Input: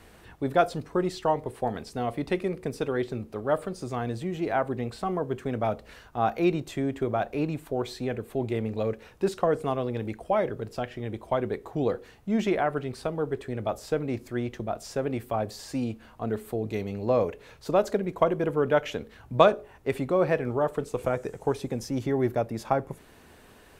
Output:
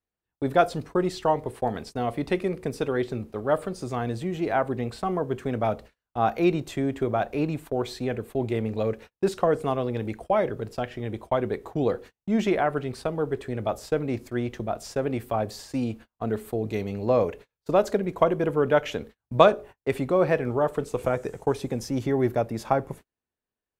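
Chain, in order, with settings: gate -42 dBFS, range -41 dB; gain +2 dB

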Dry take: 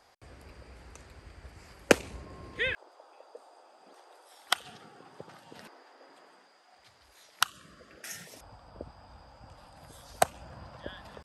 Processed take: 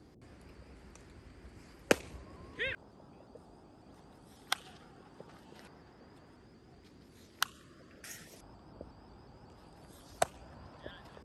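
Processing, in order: band noise 44–400 Hz -53 dBFS; shaped vibrato saw up 5.5 Hz, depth 100 cents; gain -6 dB

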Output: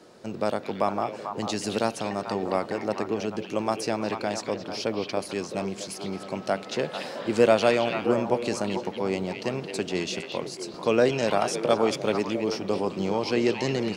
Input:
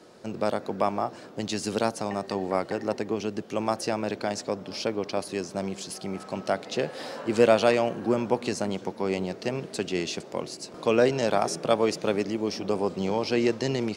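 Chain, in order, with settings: delay with a stepping band-pass 0.221 s, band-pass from 2800 Hz, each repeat -1.4 oct, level -2 dB

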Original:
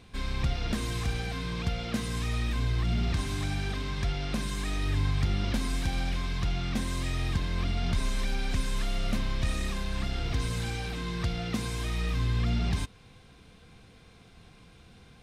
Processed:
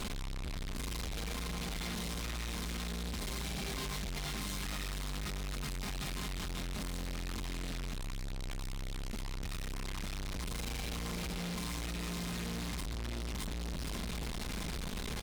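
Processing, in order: notches 50/100/150 Hz; comb 4.8 ms, depth 99%; echo 0.618 s -11.5 dB; negative-ratio compressor -37 dBFS, ratio -1; low shelf 100 Hz +9.5 dB; diffused feedback echo 0.471 s, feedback 61%, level -6 dB; limiter -29.5 dBFS, peak gain reduction 14.5 dB; high shelf 3600 Hz +6 dB; tube stage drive 55 dB, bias 0.55; gain +17.5 dB

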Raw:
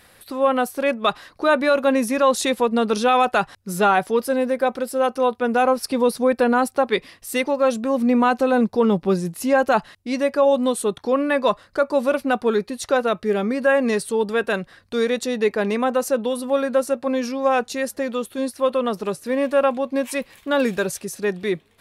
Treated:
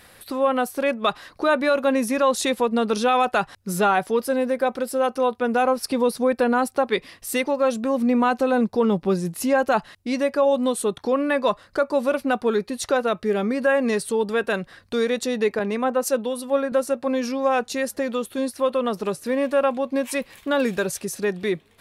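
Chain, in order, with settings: in parallel at +1 dB: compressor, threshold -26 dBFS, peak gain reduction 13.5 dB; 15.59–16.72 on the sum: three-band expander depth 100%; gain -4.5 dB

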